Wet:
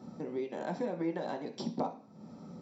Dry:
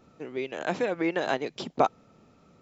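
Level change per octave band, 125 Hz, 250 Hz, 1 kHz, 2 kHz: -2.0, -3.5, -10.5, -15.0 dB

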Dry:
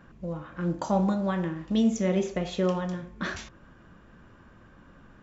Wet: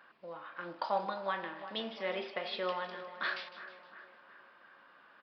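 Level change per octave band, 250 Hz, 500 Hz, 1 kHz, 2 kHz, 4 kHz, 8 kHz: -21.5 dB, -8.5 dB, -2.0 dB, 0.0 dB, 0.0 dB, n/a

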